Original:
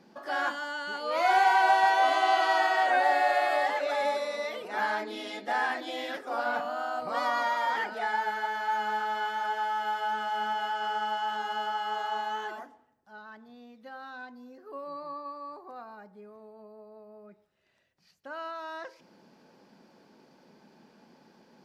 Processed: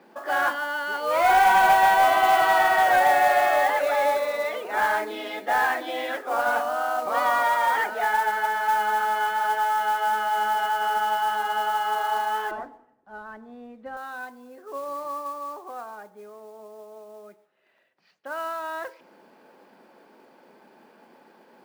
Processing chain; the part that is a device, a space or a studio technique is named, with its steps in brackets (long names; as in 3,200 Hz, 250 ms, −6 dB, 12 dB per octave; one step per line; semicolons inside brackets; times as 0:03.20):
carbon microphone (band-pass filter 350–2,700 Hz; soft clipping −18.5 dBFS, distortion −18 dB; noise that follows the level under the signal 21 dB)
0:12.51–0:13.97: RIAA equalisation playback
level +7.5 dB